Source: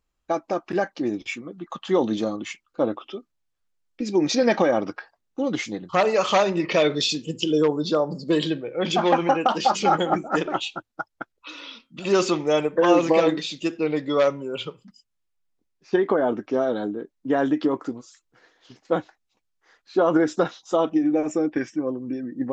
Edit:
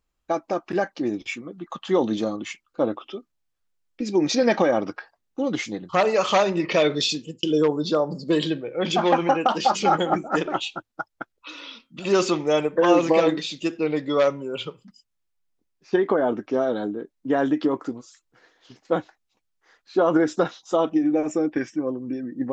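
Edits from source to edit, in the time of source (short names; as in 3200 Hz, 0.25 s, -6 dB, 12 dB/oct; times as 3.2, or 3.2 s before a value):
7.04–7.43 fade out equal-power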